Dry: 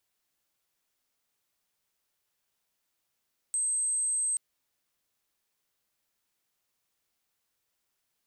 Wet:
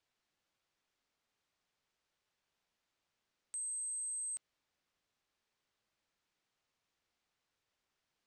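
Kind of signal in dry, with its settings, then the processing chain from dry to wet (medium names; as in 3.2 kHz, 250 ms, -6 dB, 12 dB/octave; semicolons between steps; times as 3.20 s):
tone sine 8.27 kHz -26 dBFS 0.83 s
distance through air 99 m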